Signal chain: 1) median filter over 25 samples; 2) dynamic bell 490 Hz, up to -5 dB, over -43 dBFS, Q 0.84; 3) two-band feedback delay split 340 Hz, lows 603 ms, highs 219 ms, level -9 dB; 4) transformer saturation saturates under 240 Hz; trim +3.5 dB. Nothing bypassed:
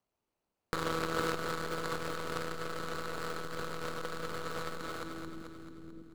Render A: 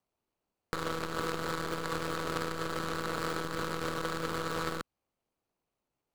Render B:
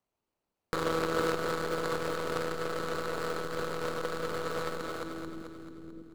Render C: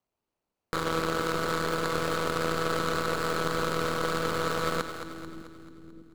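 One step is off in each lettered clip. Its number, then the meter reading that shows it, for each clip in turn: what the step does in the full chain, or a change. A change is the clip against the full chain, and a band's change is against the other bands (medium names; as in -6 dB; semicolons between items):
3, loudness change +2.5 LU; 2, crest factor change -2.5 dB; 4, crest factor change -3.5 dB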